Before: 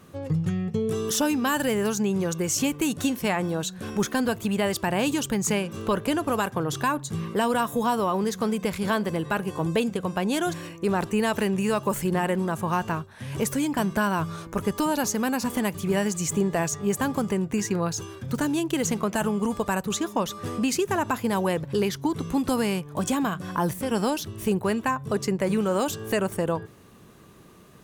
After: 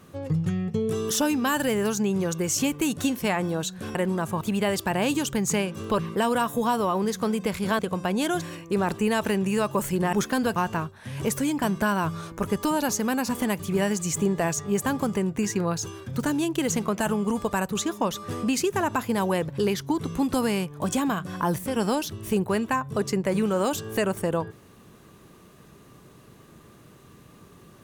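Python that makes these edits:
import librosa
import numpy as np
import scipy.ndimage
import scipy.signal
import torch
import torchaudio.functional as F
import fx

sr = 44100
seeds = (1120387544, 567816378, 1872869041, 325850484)

y = fx.edit(x, sr, fx.swap(start_s=3.95, length_s=0.43, other_s=12.25, other_length_s=0.46),
    fx.cut(start_s=5.96, length_s=1.22),
    fx.cut(start_s=8.98, length_s=0.93), tone=tone)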